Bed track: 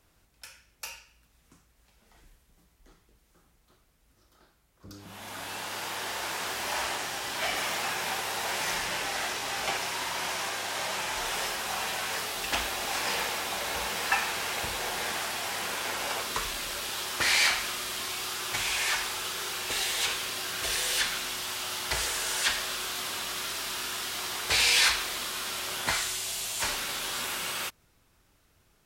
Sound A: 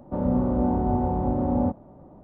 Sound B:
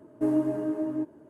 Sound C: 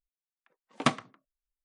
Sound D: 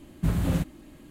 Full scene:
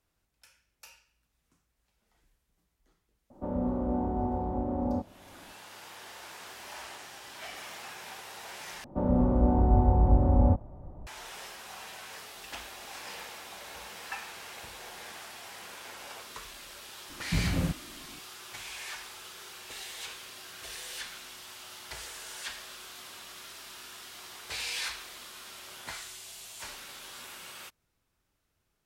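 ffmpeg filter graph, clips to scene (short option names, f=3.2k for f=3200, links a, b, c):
-filter_complex "[1:a]asplit=2[a][b];[0:a]volume=-12.5dB[c];[a]equalizer=f=140:w=3:g=-12[d];[b]asubboost=boost=12:cutoff=82[e];[c]asplit=2[f][g];[f]atrim=end=8.844[h];[e]atrim=end=2.23,asetpts=PTS-STARTPTS,volume=-1.5dB[i];[g]atrim=start=11.066[j];[d]atrim=end=2.23,asetpts=PTS-STARTPTS,volume=-6dB,afade=t=in:d=0.004:c=hsin,afade=t=out:st=2.226:d=0.004:c=hsin,adelay=3300[k];[4:a]atrim=end=1.1,asetpts=PTS-STARTPTS,volume=-4dB,afade=t=in:d=0.004:c=hsin,afade=t=out:st=1.096:d=0.004:c=hsin,adelay=17090[l];[h][i]acrossfade=d=0.004:c1=hsin:c2=hsin[m];[m][j]acrossfade=d=0.004:c1=hsin:c2=hsin[n];[n][k][l]amix=inputs=3:normalize=0"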